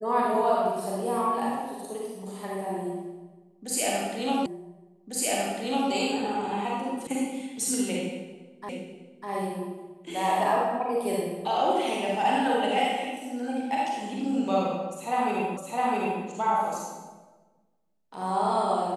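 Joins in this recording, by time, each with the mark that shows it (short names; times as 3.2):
4.46 repeat of the last 1.45 s
7.07 sound cut off
8.69 repeat of the last 0.6 s
15.57 repeat of the last 0.66 s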